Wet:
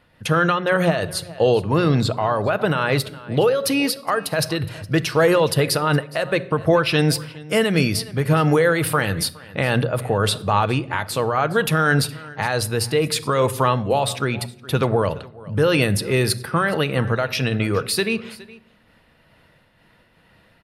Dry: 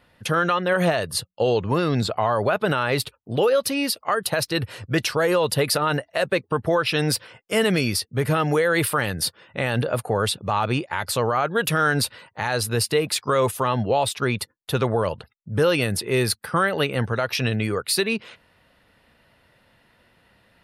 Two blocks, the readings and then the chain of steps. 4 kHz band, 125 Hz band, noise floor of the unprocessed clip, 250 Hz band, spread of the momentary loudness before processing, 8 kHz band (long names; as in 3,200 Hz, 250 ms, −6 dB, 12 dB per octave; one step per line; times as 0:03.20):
+1.0 dB, +4.5 dB, −64 dBFS, +3.5 dB, 6 LU, 0.0 dB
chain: bass and treble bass +3 dB, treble −2 dB
mains-hum notches 60/120/180 Hz
single-tap delay 416 ms −20.5 dB
rectangular room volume 2,000 cubic metres, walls furnished, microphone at 0.59 metres
amplitude modulation by smooth noise, depth 60%
level +5 dB